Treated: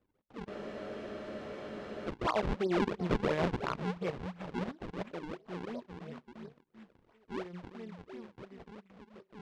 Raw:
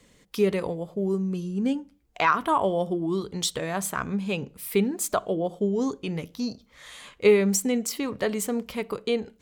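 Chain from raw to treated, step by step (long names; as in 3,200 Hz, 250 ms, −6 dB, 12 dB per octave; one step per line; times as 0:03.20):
source passing by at 0:03.04, 37 m/s, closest 13 metres
echo through a band-pass that steps 388 ms, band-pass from 190 Hz, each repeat 1.4 octaves, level −5 dB
sample-and-hold swept by an LFO 41×, swing 160% 2.9 Hz
low-pass filter 3,600 Hz 12 dB per octave
transient designer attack −7 dB, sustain −11 dB
parametric band 650 Hz +3.5 dB 2 octaves
frozen spectrum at 0:00.51, 1.57 s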